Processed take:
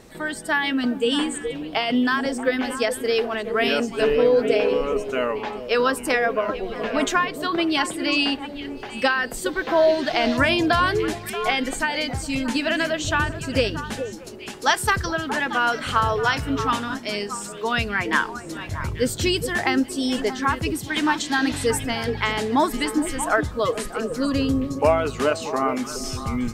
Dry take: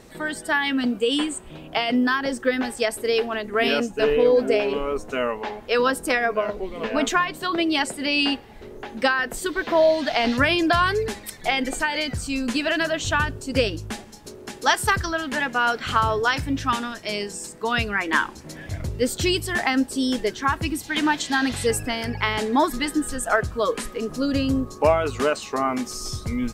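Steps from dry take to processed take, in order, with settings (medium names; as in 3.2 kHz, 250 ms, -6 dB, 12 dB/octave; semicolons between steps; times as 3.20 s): repeats whose band climbs or falls 210 ms, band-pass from 150 Hz, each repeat 1.4 oct, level -3 dB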